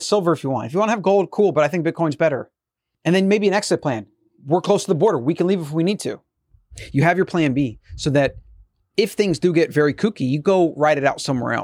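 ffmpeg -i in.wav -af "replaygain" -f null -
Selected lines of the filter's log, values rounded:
track_gain = -0.4 dB
track_peak = 0.425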